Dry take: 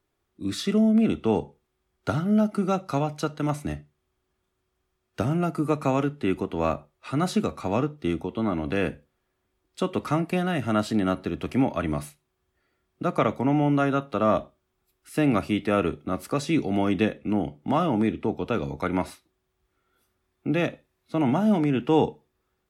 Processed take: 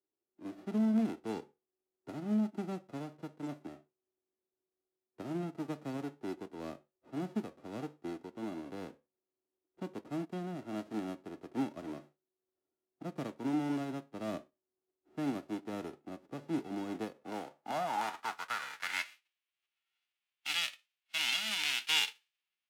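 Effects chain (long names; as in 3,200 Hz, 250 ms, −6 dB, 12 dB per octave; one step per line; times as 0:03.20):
spectral envelope flattened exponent 0.1
band-pass filter sweep 340 Hz → 2,800 Hz, 0:16.96–0:19.34
one half of a high-frequency compander decoder only
level −1 dB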